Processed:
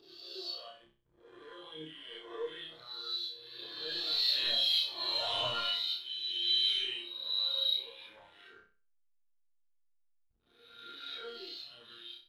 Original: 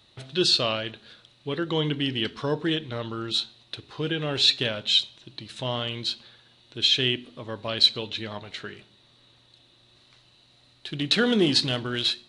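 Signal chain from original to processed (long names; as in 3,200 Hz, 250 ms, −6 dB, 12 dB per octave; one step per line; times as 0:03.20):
peak hold with a rise ahead of every peak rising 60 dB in 1.90 s
source passing by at 0:05.16, 13 m/s, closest 3.4 metres
mid-hump overdrive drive 23 dB, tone 6,000 Hz, clips at −11.5 dBFS
dynamic equaliser 180 Hz, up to −6 dB, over −49 dBFS, Q 0.73
in parallel at +1 dB: downward compressor, threshold −34 dBFS, peak gain reduction 16 dB
on the sum: phase shifter 1.1 Hz, delay 3 ms, feedback 43%
resonators tuned to a chord D#2 minor, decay 0.29 s
slack as between gear wheels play −39 dBFS
on a send: flutter between parallel walls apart 5.4 metres, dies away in 0.53 s
on the sum: every bin expanded away from the loudest bin 1.5 to 1
level −4 dB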